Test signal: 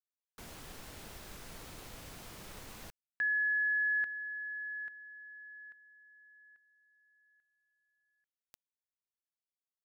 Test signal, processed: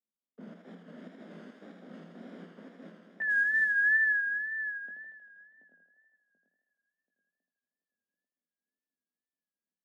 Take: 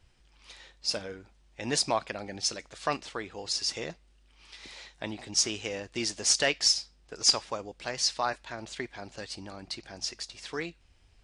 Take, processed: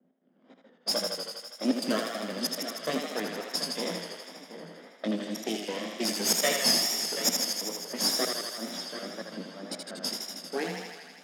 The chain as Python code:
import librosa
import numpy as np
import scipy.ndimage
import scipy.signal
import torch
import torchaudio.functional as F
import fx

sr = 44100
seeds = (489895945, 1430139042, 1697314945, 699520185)

p1 = fx.lower_of_two(x, sr, delay_ms=0.6)
p2 = (np.mod(10.0 ** (23.5 / 20.0) * p1 + 1.0, 2.0) - 1.0) / 10.0 ** (23.5 / 20.0)
p3 = p1 + (p2 * librosa.db_to_amplitude(-10.5))
p4 = fx.peak_eq(p3, sr, hz=1100.0, db=-8.5, octaves=1.6)
p5 = fx.doubler(p4, sr, ms=19.0, db=-6.0)
p6 = fx.step_gate(p5, sr, bpm=140, pattern='x.xxx.x.x', floor_db=-24.0, edge_ms=4.5)
p7 = fx.low_shelf(p6, sr, hz=480.0, db=6.0)
p8 = p7 + fx.echo_feedback(p7, sr, ms=734, feedback_pct=35, wet_db=-10.5, dry=0)
p9 = fx.env_lowpass(p8, sr, base_hz=620.0, full_db=-29.5)
p10 = scipy.signal.sosfilt(scipy.signal.cheby1(6, 9, 170.0, 'highpass', fs=sr, output='sos'), p9)
p11 = fx.echo_thinned(p10, sr, ms=80, feedback_pct=79, hz=370.0, wet_db=-4.0)
p12 = fx.wow_flutter(p11, sr, seeds[0], rate_hz=2.1, depth_cents=69.0)
y = p12 * librosa.db_to_amplitude(9.0)